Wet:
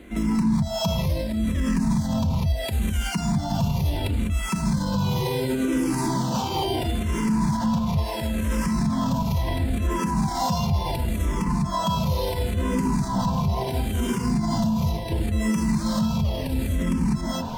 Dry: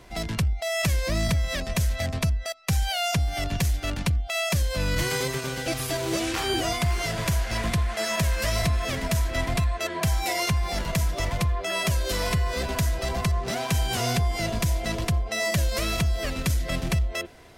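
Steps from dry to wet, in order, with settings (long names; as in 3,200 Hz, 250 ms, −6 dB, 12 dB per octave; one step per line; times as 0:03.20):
dynamic equaliser 2,000 Hz, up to −7 dB, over −44 dBFS, Q 0.92
in parallel at −9.5 dB: sample-rate reduction 12,000 Hz
on the sum: hollow resonant body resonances 220/920 Hz, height 18 dB, ringing for 50 ms
reversed playback
upward compression, threshold −25 dBFS
reversed playback
reverb whose tail is shaped and stops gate 220 ms rising, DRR −6 dB
brickwall limiter −13.5 dBFS, peak gain reduction 17 dB
frequency shifter mixed with the dry sound −0.72 Hz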